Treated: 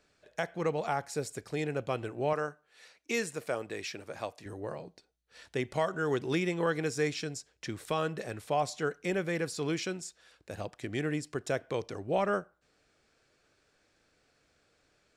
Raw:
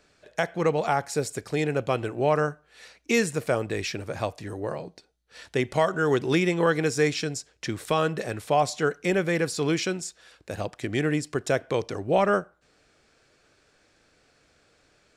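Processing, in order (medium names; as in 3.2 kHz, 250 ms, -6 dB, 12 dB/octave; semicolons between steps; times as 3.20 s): 2.33–4.46 s: high-pass 300 Hz 6 dB/octave; trim -7.5 dB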